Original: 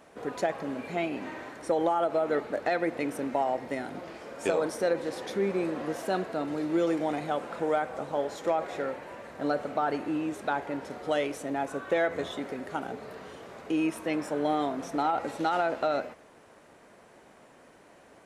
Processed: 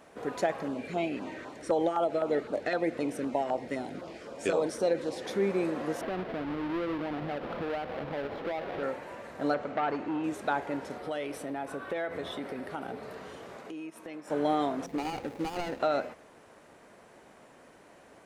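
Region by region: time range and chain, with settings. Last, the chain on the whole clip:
0.68–5.25 LPF 10000 Hz + LFO notch saw down 3.9 Hz 690–2400 Hz
6.01–8.83 half-waves squared off + air absorption 380 m + compressor 3:1, threshold -33 dBFS
9.54–10.24 air absorption 110 m + core saturation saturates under 930 Hz
10.98–13.03 bell 6800 Hz -10.5 dB 0.3 oct + compressor 2.5:1, threshold -33 dBFS
13.57–14.3 HPF 130 Hz + transient shaper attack -2 dB, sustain -8 dB + compressor 4:1, threshold -40 dBFS
14.86–15.8 median filter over 41 samples + notch 640 Hz, Q 5.2
whole clip: dry

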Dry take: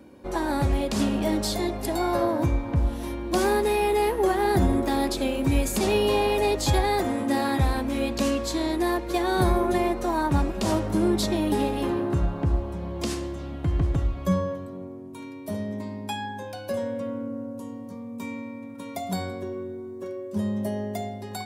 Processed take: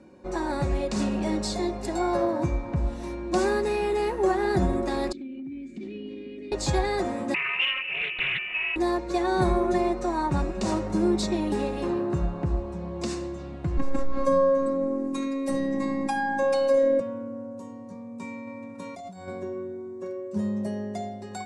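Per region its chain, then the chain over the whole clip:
5.12–6.52 vowel filter i + tilt shelf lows +5.5 dB, about 770 Hz + compressor 4:1, threshold -29 dBFS
7.34–8.76 inverted band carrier 2900 Hz + Doppler distortion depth 0.39 ms
13.77–17 comb 3.8 ms, depth 97% + robotiser 272 Hz + fast leveller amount 70%
18.47–19.28 de-hum 76.98 Hz, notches 34 + negative-ratio compressor -37 dBFS
whole clip: Chebyshev low-pass 8000 Hz, order 3; notch 3200 Hz, Q 6.8; comb 5.5 ms, depth 38%; gain -2.5 dB

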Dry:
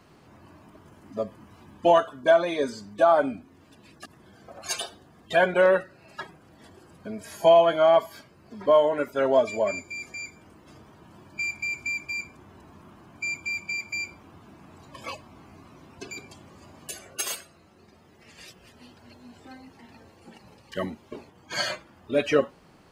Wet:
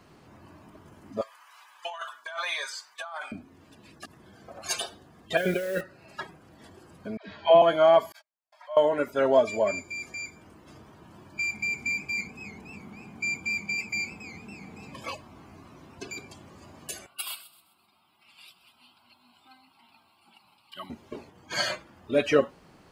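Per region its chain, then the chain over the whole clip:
1.21–3.32 HPF 1000 Hz 24 dB/oct + negative-ratio compressor -35 dBFS
5.37–5.81 Butterworth band-stop 960 Hz, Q 0.91 + negative-ratio compressor -28 dBFS + requantised 8-bit, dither triangular
7.17–7.62 Chebyshev low-pass 4000 Hz, order 4 + dispersion lows, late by 0.12 s, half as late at 440 Hz
8.12–8.77 gate -46 dBFS, range -39 dB + compressor 2.5:1, threshold -40 dBFS + rippled Chebyshev high-pass 600 Hz, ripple 3 dB
11.52–15 bell 700 Hz -3.5 dB 1.8 oct + small resonant body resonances 210/450/770/2100 Hz, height 10 dB, ringing for 35 ms + warbling echo 0.277 s, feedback 62%, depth 141 cents, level -15.5 dB
17.06–20.9 HPF 1200 Hz 6 dB/oct + fixed phaser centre 1800 Hz, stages 6 + thin delay 0.129 s, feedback 39%, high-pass 3600 Hz, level -14 dB
whole clip: dry

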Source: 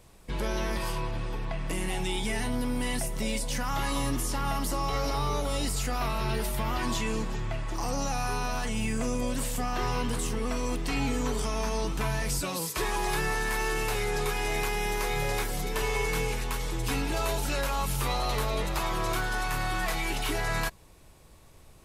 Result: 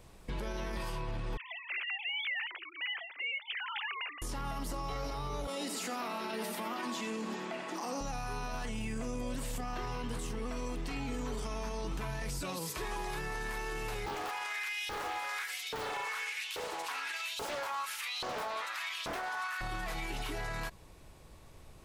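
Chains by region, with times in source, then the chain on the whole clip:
1.37–4.22 sine-wave speech + Chebyshev high-pass 2400 Hz
5.47–8.01 steep high-pass 180 Hz 72 dB/oct + echo 90 ms -8.5 dB
14.06–19.61 HPF 150 Hz + LFO high-pass saw up 1.2 Hz 440–3400 Hz + Doppler distortion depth 0.94 ms
whole clip: bell 12000 Hz -5 dB 1.6 oct; limiter -29.5 dBFS

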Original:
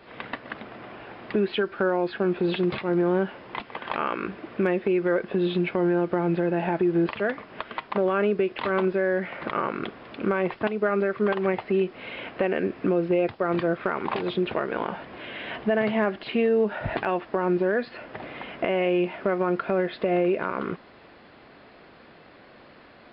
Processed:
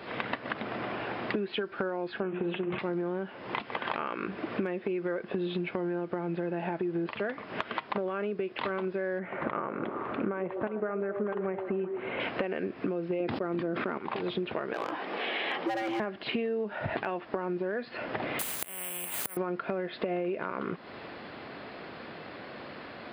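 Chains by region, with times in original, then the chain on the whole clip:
2.2–2.79 Chebyshev low-pass 3000 Hz, order 4 + notches 60/120/180/240/300/360/420/480/540 Hz
9.19–12.2 LPF 1700 Hz + delay with a stepping band-pass 0.128 s, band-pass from 420 Hz, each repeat 0.7 oct, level -7 dB
13.2–13.98 expander -45 dBFS + bell 260 Hz +10.5 dB 1.2 oct + sustainer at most 35 dB/s
14.73–16 hard clip -23 dBFS + frequency shift +120 Hz
18.39–19.37 flipped gate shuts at -22 dBFS, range -31 dB + careless resampling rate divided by 4×, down filtered, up zero stuff + spectral compressor 4:1
whole clip: HPF 82 Hz; compressor 10:1, threshold -36 dBFS; gain +7 dB

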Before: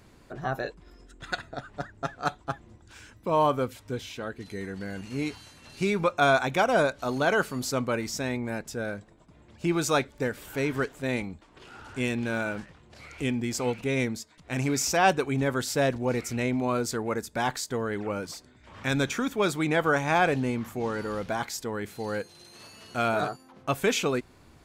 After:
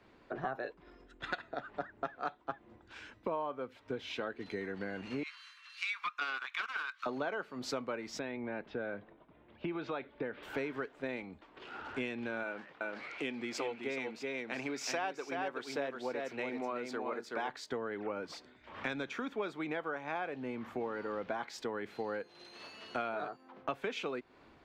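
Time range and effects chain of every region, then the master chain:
5.23–7.06 Chebyshev high-pass 1100 Hz, order 5 + Doppler distortion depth 0.15 ms
8.19–10.43 Chebyshev low-pass 3500 Hz, order 3 + compressor 2.5:1, threshold -30 dBFS
12.43–17.49 HPF 300 Hz 6 dB/oct + echo 0.376 s -5 dB
whole clip: three-band isolator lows -15 dB, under 230 Hz, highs -23 dB, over 4100 Hz; compressor 10:1, threshold -39 dBFS; three-band expander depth 40%; gain +4.5 dB

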